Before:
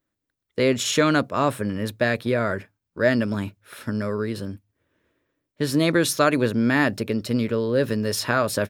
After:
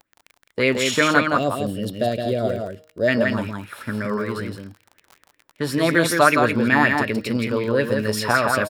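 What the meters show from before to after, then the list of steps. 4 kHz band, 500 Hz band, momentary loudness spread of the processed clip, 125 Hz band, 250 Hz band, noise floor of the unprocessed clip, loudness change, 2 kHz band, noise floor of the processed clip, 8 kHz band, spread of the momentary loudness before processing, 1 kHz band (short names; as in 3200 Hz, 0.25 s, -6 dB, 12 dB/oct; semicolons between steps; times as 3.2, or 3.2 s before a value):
+1.5 dB, +1.5 dB, 13 LU, 0.0 dB, +0.5 dB, -83 dBFS, +2.5 dB, +5.5 dB, -70 dBFS, -0.5 dB, 11 LU, +5.5 dB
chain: notch 6300 Hz, Q 13; de-hum 156.2 Hz, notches 36; spectral gain 1.37–3.08, 790–2700 Hz -18 dB; crackle 28/s -31 dBFS; on a send: echo 0.168 s -4.5 dB; on the sum: LFO bell 5.3 Hz 770–2600 Hz +12 dB; gain -1 dB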